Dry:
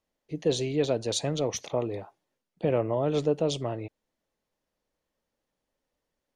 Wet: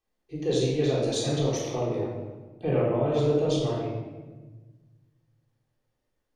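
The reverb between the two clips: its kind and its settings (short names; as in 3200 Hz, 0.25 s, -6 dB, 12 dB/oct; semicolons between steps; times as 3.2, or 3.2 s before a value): shoebox room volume 970 m³, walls mixed, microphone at 3.7 m; gain -6.5 dB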